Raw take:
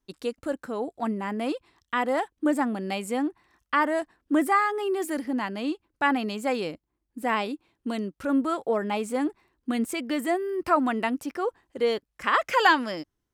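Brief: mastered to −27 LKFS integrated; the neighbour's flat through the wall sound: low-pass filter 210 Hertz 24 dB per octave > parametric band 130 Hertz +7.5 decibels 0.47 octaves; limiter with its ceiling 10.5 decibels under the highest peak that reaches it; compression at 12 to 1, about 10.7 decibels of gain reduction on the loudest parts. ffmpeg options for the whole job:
ffmpeg -i in.wav -af "acompressor=threshold=-24dB:ratio=12,alimiter=limit=-22dB:level=0:latency=1,lowpass=frequency=210:width=0.5412,lowpass=frequency=210:width=1.3066,equalizer=frequency=130:width_type=o:width=0.47:gain=7.5,volume=15dB" out.wav

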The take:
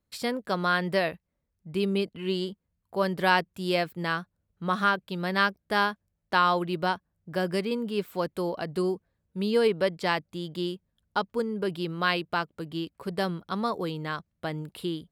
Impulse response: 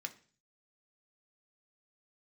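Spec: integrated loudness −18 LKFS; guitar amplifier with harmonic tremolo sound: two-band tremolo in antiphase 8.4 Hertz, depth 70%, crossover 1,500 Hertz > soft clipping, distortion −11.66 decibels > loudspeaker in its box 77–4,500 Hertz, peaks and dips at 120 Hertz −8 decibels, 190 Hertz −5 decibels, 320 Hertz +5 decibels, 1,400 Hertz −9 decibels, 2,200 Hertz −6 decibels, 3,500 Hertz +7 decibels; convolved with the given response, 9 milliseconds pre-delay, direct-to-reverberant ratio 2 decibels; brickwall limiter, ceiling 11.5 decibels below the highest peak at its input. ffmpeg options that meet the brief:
-filter_complex "[0:a]alimiter=limit=-20dB:level=0:latency=1,asplit=2[link_01][link_02];[1:a]atrim=start_sample=2205,adelay=9[link_03];[link_02][link_03]afir=irnorm=-1:irlink=0,volume=-0.5dB[link_04];[link_01][link_04]amix=inputs=2:normalize=0,acrossover=split=1500[link_05][link_06];[link_05]aeval=exprs='val(0)*(1-0.7/2+0.7/2*cos(2*PI*8.4*n/s))':channel_layout=same[link_07];[link_06]aeval=exprs='val(0)*(1-0.7/2-0.7/2*cos(2*PI*8.4*n/s))':channel_layout=same[link_08];[link_07][link_08]amix=inputs=2:normalize=0,asoftclip=threshold=-29dB,highpass=77,equalizer=frequency=120:width_type=q:width=4:gain=-8,equalizer=frequency=190:width_type=q:width=4:gain=-5,equalizer=frequency=320:width_type=q:width=4:gain=5,equalizer=frequency=1400:width_type=q:width=4:gain=-9,equalizer=frequency=2200:width_type=q:width=4:gain=-6,equalizer=frequency=3500:width_type=q:width=4:gain=7,lowpass=frequency=4500:width=0.5412,lowpass=frequency=4500:width=1.3066,volume=19.5dB"

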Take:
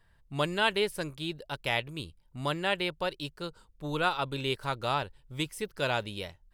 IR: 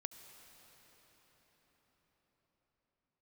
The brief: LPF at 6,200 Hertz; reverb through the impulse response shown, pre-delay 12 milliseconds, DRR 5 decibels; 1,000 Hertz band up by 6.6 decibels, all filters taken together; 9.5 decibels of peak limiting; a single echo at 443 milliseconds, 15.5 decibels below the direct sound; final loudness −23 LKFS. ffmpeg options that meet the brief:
-filter_complex "[0:a]lowpass=6200,equalizer=frequency=1000:width_type=o:gain=8.5,alimiter=limit=-18dB:level=0:latency=1,aecho=1:1:443:0.168,asplit=2[link_01][link_02];[1:a]atrim=start_sample=2205,adelay=12[link_03];[link_02][link_03]afir=irnorm=-1:irlink=0,volume=-1.5dB[link_04];[link_01][link_04]amix=inputs=2:normalize=0,volume=8dB"

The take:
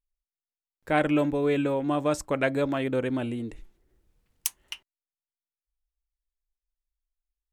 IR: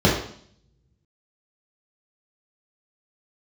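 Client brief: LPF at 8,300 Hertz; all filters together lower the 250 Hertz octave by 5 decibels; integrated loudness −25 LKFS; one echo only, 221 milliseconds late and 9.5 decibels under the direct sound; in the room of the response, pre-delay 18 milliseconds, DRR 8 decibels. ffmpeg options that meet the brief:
-filter_complex "[0:a]lowpass=8300,equalizer=frequency=250:width_type=o:gain=-6,aecho=1:1:221:0.335,asplit=2[link_01][link_02];[1:a]atrim=start_sample=2205,adelay=18[link_03];[link_02][link_03]afir=irnorm=-1:irlink=0,volume=-29dB[link_04];[link_01][link_04]amix=inputs=2:normalize=0,volume=2.5dB"

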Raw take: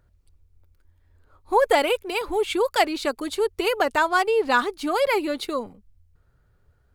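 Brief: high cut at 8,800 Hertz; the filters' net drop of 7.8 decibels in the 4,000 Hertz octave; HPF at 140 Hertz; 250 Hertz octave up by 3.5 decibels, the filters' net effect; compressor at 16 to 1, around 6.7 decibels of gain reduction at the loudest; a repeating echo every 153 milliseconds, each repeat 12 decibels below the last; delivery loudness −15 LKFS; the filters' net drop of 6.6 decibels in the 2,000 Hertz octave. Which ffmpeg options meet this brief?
ffmpeg -i in.wav -af "highpass=140,lowpass=8800,equalizer=frequency=250:width_type=o:gain=5.5,equalizer=frequency=2000:width_type=o:gain=-8,equalizer=frequency=4000:width_type=o:gain=-7,acompressor=threshold=-21dB:ratio=16,aecho=1:1:153|306|459:0.251|0.0628|0.0157,volume=12dB" out.wav

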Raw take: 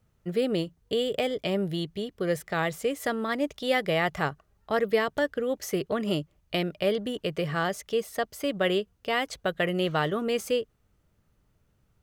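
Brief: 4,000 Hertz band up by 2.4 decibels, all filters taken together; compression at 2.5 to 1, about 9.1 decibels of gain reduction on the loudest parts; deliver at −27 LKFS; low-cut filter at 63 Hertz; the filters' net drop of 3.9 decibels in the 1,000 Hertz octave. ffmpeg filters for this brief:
ffmpeg -i in.wav -af "highpass=63,equalizer=frequency=1000:width_type=o:gain=-6,equalizer=frequency=4000:width_type=o:gain=4,acompressor=threshold=-34dB:ratio=2.5,volume=9dB" out.wav

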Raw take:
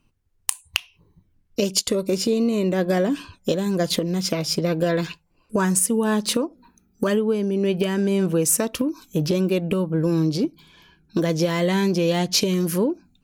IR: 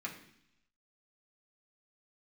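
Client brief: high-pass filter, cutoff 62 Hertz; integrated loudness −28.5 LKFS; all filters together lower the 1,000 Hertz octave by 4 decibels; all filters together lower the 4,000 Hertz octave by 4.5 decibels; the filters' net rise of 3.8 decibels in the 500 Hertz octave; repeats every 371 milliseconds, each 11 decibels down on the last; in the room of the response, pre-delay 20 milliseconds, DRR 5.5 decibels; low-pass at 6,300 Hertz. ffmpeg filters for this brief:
-filter_complex "[0:a]highpass=62,lowpass=6300,equalizer=frequency=500:width_type=o:gain=6.5,equalizer=frequency=1000:width_type=o:gain=-8.5,equalizer=frequency=4000:width_type=o:gain=-4.5,aecho=1:1:371|742|1113:0.282|0.0789|0.0221,asplit=2[link_01][link_02];[1:a]atrim=start_sample=2205,adelay=20[link_03];[link_02][link_03]afir=irnorm=-1:irlink=0,volume=-6.5dB[link_04];[link_01][link_04]amix=inputs=2:normalize=0,volume=-8.5dB"

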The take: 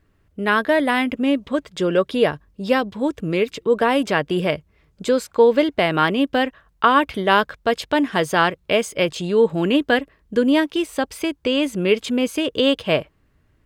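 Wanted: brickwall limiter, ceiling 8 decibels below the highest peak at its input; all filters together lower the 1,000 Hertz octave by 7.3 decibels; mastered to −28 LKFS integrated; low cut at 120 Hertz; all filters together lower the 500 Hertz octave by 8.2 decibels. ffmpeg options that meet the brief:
ffmpeg -i in.wav -af "highpass=120,equalizer=frequency=500:width_type=o:gain=-8,equalizer=frequency=1000:width_type=o:gain=-7,volume=-2.5dB,alimiter=limit=-16.5dB:level=0:latency=1" out.wav

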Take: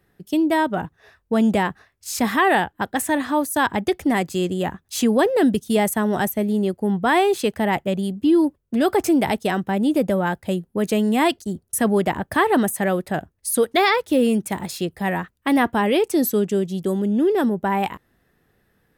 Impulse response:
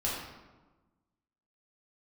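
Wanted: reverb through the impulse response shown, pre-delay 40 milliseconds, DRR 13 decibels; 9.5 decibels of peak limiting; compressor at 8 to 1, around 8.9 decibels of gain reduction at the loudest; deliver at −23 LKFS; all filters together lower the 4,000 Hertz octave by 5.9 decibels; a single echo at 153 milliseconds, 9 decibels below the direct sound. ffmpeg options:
-filter_complex "[0:a]equalizer=frequency=4000:width_type=o:gain=-8,acompressor=threshold=-23dB:ratio=8,alimiter=limit=-23.5dB:level=0:latency=1,aecho=1:1:153:0.355,asplit=2[link_01][link_02];[1:a]atrim=start_sample=2205,adelay=40[link_03];[link_02][link_03]afir=irnorm=-1:irlink=0,volume=-19.5dB[link_04];[link_01][link_04]amix=inputs=2:normalize=0,volume=7.5dB"

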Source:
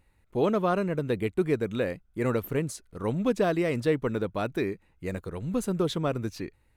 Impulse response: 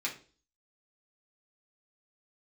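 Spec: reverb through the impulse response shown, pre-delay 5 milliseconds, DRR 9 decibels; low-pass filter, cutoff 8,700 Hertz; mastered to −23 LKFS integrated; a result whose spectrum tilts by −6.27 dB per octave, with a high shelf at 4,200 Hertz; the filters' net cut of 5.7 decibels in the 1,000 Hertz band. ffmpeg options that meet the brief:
-filter_complex "[0:a]lowpass=8700,equalizer=frequency=1000:width_type=o:gain=-8.5,highshelf=frequency=4200:gain=-5,asplit=2[link_01][link_02];[1:a]atrim=start_sample=2205,adelay=5[link_03];[link_02][link_03]afir=irnorm=-1:irlink=0,volume=-13.5dB[link_04];[link_01][link_04]amix=inputs=2:normalize=0,volume=7dB"

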